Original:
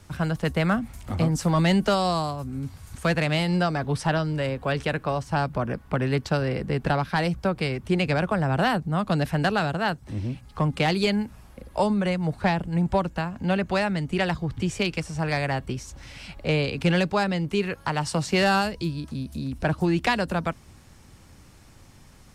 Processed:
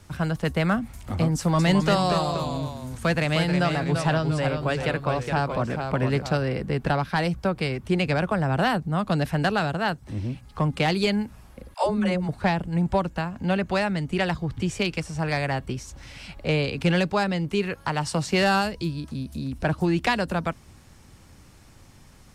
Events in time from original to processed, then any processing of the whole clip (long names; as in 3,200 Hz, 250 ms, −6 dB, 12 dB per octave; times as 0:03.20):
0:01.38–0:06.39: delay with pitch and tempo change per echo 208 ms, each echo −1 semitone, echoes 2, each echo −6 dB
0:11.74–0:12.29: all-pass dispersion lows, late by 112 ms, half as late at 360 Hz